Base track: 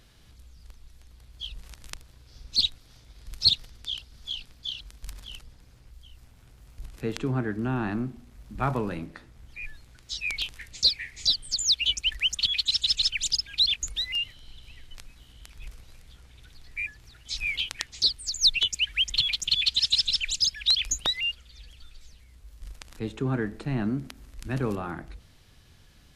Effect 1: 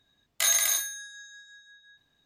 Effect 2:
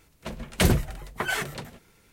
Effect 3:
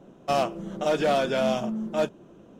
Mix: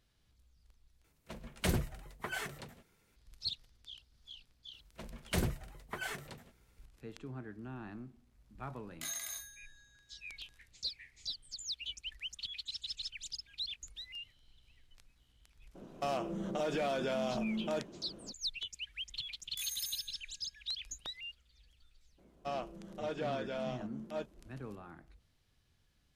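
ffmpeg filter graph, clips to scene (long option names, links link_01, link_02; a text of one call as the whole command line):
ffmpeg -i bed.wav -i cue0.wav -i cue1.wav -i cue2.wav -filter_complex "[2:a]asplit=2[link_01][link_02];[1:a]asplit=2[link_03][link_04];[3:a]asplit=2[link_05][link_06];[0:a]volume=-17.5dB[link_07];[link_05]acompressor=threshold=-32dB:ratio=4:attack=3.9:release=57:knee=6:detection=peak[link_08];[link_04]aderivative[link_09];[link_06]acrossover=split=5900[link_10][link_11];[link_11]acompressor=threshold=-59dB:ratio=4:attack=1:release=60[link_12];[link_10][link_12]amix=inputs=2:normalize=0[link_13];[link_07]asplit=2[link_14][link_15];[link_14]atrim=end=1.044[link_16];[link_01]atrim=end=2.12,asetpts=PTS-STARTPTS,volume=-11.5dB[link_17];[link_15]atrim=start=3.156[link_18];[link_02]atrim=end=2.12,asetpts=PTS-STARTPTS,volume=-12.5dB,afade=type=in:duration=0.004:curve=hsin,afade=type=out:start_time=2.116:duration=0.004:curve=hsin,adelay=208593S[link_19];[link_03]atrim=end=2.25,asetpts=PTS-STARTPTS,volume=-17.5dB,afade=type=in:duration=0.004:curve=hsin,afade=type=out:start_time=2.246:duration=0.004:curve=hsin,adelay=8610[link_20];[link_08]atrim=end=2.59,asetpts=PTS-STARTPTS,volume=-1.5dB,afade=type=in:duration=0.02,afade=type=out:start_time=2.57:duration=0.02,adelay=15740[link_21];[link_09]atrim=end=2.25,asetpts=PTS-STARTPTS,volume=-17.5dB,afade=type=in:duration=0.004:curve=hsin,afade=type=out:start_time=2.246:duration=0.004:curve=hsin,adelay=19170[link_22];[link_13]atrim=end=2.59,asetpts=PTS-STARTPTS,volume=-14.5dB,afade=type=in:duration=0.02,afade=type=out:start_time=2.57:duration=0.02,adelay=22170[link_23];[link_16][link_17]acrossfade=duration=0.004:curve1=hsin:curve2=hsin[link_24];[link_24][link_18]acrossfade=duration=0.004:curve1=hsin:curve2=hsin[link_25];[link_25][link_19][link_20][link_21][link_22][link_23]amix=inputs=6:normalize=0" out.wav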